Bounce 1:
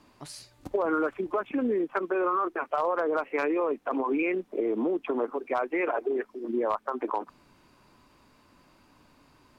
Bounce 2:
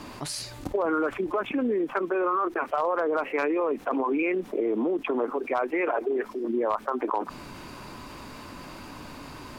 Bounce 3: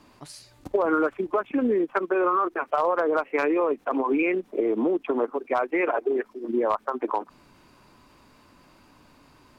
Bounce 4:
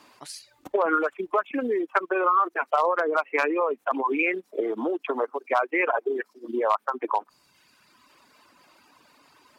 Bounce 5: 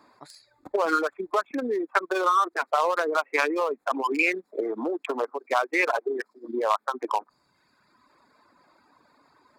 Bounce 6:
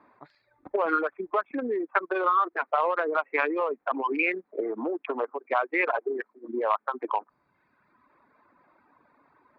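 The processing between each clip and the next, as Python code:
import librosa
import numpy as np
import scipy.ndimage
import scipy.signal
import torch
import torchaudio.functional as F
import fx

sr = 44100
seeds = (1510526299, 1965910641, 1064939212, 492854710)

y1 = fx.env_flatten(x, sr, amount_pct=50)
y2 = fx.upward_expand(y1, sr, threshold_db=-36.0, expansion=2.5)
y2 = F.gain(torch.from_numpy(y2), 5.0).numpy()
y3 = fx.dereverb_blind(y2, sr, rt60_s=1.4)
y3 = fx.highpass(y3, sr, hz=750.0, slope=6)
y3 = F.gain(torch.from_numpy(y3), 5.0).numpy()
y4 = fx.wiener(y3, sr, points=15)
y4 = fx.high_shelf(y4, sr, hz=2700.0, db=10.5)
y4 = F.gain(torch.from_numpy(y4), -1.5).numpy()
y5 = scipy.signal.sosfilt(scipy.signal.butter(4, 2700.0, 'lowpass', fs=sr, output='sos'), y4)
y5 = F.gain(torch.from_numpy(y5), -1.5).numpy()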